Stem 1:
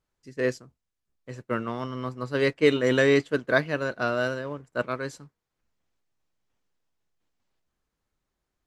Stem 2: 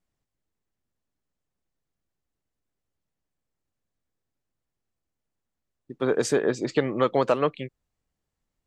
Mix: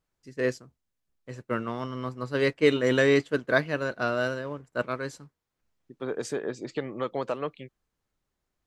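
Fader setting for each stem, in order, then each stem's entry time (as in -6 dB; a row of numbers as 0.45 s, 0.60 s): -1.0 dB, -8.5 dB; 0.00 s, 0.00 s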